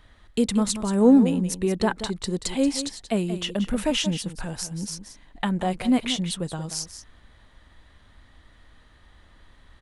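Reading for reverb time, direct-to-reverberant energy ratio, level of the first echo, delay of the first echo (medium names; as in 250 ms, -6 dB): no reverb, no reverb, -11.5 dB, 181 ms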